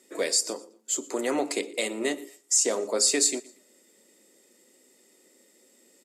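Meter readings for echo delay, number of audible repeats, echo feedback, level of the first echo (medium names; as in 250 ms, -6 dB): 118 ms, 2, 32%, -22.0 dB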